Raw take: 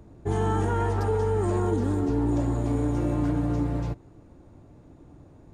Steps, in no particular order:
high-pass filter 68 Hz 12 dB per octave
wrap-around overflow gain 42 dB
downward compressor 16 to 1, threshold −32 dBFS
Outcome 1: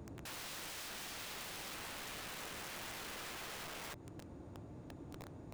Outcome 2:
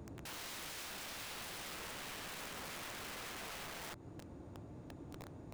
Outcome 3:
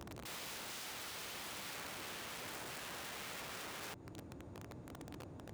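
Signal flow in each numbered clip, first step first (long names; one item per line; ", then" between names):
high-pass filter, then downward compressor, then wrap-around overflow
downward compressor, then high-pass filter, then wrap-around overflow
downward compressor, then wrap-around overflow, then high-pass filter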